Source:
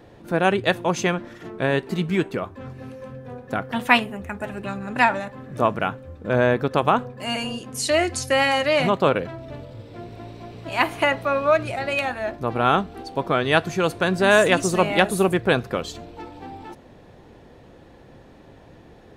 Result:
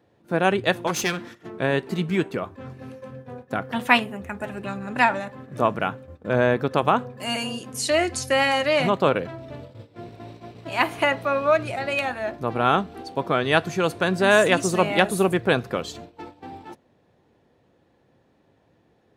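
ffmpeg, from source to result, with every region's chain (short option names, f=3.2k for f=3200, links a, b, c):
-filter_complex "[0:a]asettb=1/sr,asplit=3[a][b][c];[a]atrim=end=0.874[d];[b]atrim=start=0.87:end=1.35,asetpts=PTS-STARTPTS,afade=t=in:d=0.004:c=qsin,afade=t=out:st=0.476:d=0.004:c=qsin,highshelf=f=2k:g=8.5,bandreject=f=580:w=6.9,aeval=exprs='clip(val(0),-1,0.0299)':c=same[e];[c]atrim=start=1.346[f];[d][e]acrossfade=d=0.004:c1=hsin:c2=qsin[g];[g][f]acrossfade=d=0.004:c1=qsin:c2=hsin,asettb=1/sr,asplit=3[h][i][j];[h]atrim=end=7.174[k];[i]atrim=start=7.17:end=7.74,asetpts=PTS-STARTPTS,afade=t=in:d=0.004:c=qsin,afade=t=out:st=0.566:d=0.004:c=qsin,highpass=61,highshelf=f=6.7k:g=7[l];[j]atrim=start=7.736[m];[k][l]acrossfade=d=0.004:c1=hsin:c2=qsin[n];[n][m]acrossfade=d=0.004:c1=qsin:c2=hsin,agate=range=-13dB:threshold=-38dB:ratio=16:detection=peak,highpass=82,volume=-1dB"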